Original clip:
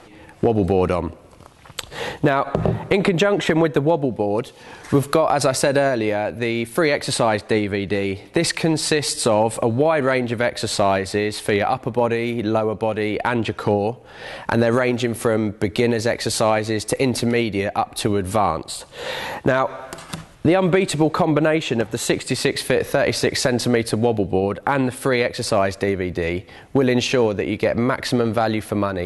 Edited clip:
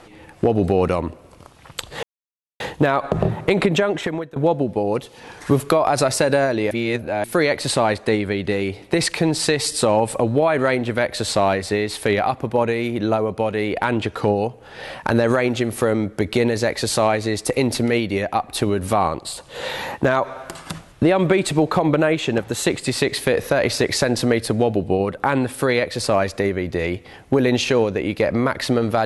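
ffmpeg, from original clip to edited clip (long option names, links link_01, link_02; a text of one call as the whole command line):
ffmpeg -i in.wav -filter_complex "[0:a]asplit=5[link_01][link_02][link_03][link_04][link_05];[link_01]atrim=end=2.03,asetpts=PTS-STARTPTS,afade=type=out:start_time=2.026:duration=0.004:curve=hsin,apad=pad_dur=0.57[link_06];[link_02]atrim=start=2.03:end=3.79,asetpts=PTS-STARTPTS,afade=type=in:duration=0.004:curve=hsin,afade=type=out:start_time=1.12:duration=0.64:silence=0.0707946[link_07];[link_03]atrim=start=3.79:end=6.142,asetpts=PTS-STARTPTS,afade=type=in:duration=0.004:curve=hsin:silence=0.0707946[link_08];[link_04]atrim=start=6.138:end=6.672,asetpts=PTS-STARTPTS,areverse[link_09];[link_05]atrim=start=6.668[link_10];[link_06][link_07][link_08]concat=n=3:v=0:a=1[link_11];[link_11][link_09]acrossfade=duration=0.004:curve1=hsin:curve2=hsin[link_12];[link_12][link_10]acrossfade=duration=0.004:curve1=hsin:curve2=hsin" out.wav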